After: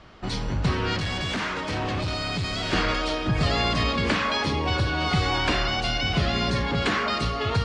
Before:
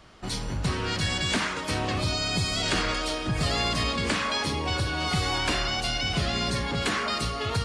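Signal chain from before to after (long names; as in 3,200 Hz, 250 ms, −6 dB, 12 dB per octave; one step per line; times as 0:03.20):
0:00.99–0:02.73: gain into a clipping stage and back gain 28 dB
high-frequency loss of the air 120 metres
level +4 dB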